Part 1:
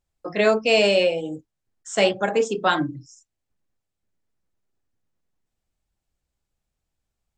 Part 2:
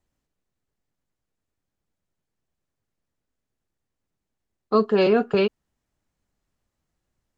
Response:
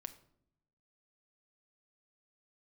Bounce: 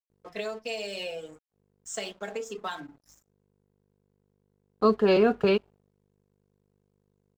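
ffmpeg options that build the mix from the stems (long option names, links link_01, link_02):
-filter_complex "[0:a]bass=frequency=250:gain=-8,treble=frequency=4000:gain=7,aecho=1:1:4.5:0.67,acompressor=threshold=-20dB:ratio=10,volume=-12dB,asplit=3[link_01][link_02][link_03];[link_02]volume=-7dB[link_04];[1:a]aeval=exprs='val(0)+0.00251*(sin(2*PI*50*n/s)+sin(2*PI*2*50*n/s)/2+sin(2*PI*3*50*n/s)/3+sin(2*PI*4*50*n/s)/4+sin(2*PI*5*50*n/s)/5)':channel_layout=same,adelay=100,volume=-3dB,asplit=2[link_05][link_06];[link_06]volume=-16.5dB[link_07];[link_03]apad=whole_len=329465[link_08];[link_05][link_08]sidechaincompress=threshold=-55dB:ratio=16:attack=16:release=242[link_09];[2:a]atrim=start_sample=2205[link_10];[link_04][link_07]amix=inputs=2:normalize=0[link_11];[link_11][link_10]afir=irnorm=-1:irlink=0[link_12];[link_01][link_09][link_12]amix=inputs=3:normalize=0,aeval=exprs='sgn(val(0))*max(abs(val(0))-0.00224,0)':channel_layout=same"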